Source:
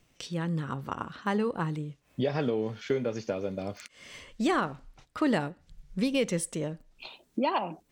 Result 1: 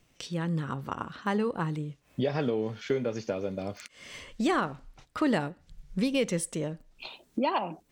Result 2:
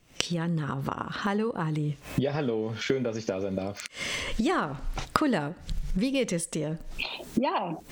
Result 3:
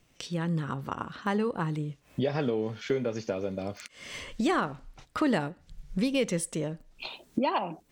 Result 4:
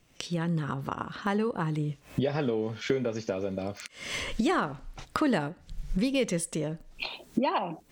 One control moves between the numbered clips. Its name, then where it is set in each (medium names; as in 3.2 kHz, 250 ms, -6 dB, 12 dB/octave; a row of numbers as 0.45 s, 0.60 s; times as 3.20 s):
recorder AGC, rising by: 5 dB/s, 91 dB/s, 14 dB/s, 37 dB/s